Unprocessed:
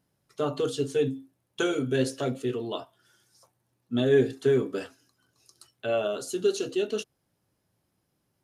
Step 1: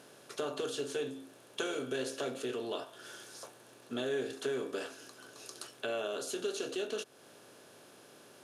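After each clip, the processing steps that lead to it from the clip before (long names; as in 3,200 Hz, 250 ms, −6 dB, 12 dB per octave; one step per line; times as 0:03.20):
compressor on every frequency bin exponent 0.6
high-pass filter 550 Hz 6 dB per octave
downward compressor 2 to 1, threshold −40 dBFS, peak gain reduction 11 dB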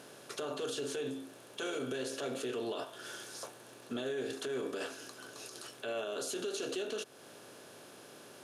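brickwall limiter −32.5 dBFS, peak gain reduction 11 dB
level +3.5 dB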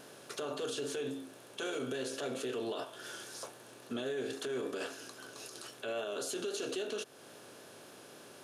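pitch vibrato 3.7 Hz 30 cents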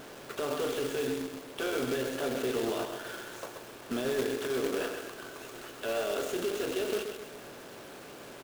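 running median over 9 samples
repeating echo 129 ms, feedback 42%, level −7 dB
log-companded quantiser 4 bits
level +5 dB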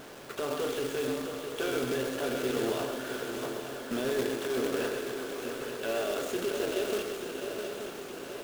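feedback echo with a long and a short gap by turns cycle 877 ms, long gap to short 3 to 1, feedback 59%, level −8 dB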